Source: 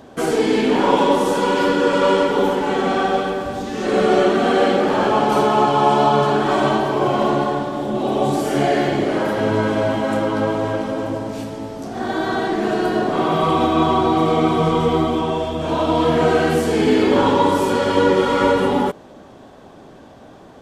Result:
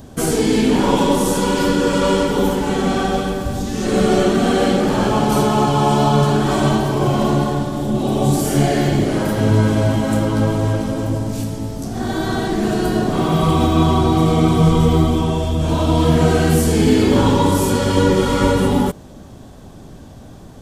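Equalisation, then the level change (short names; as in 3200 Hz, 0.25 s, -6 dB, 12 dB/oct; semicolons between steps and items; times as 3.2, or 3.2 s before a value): tone controls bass +12 dB, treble +5 dB; low shelf 76 Hz +9.5 dB; high shelf 6000 Hz +12 dB; -3.0 dB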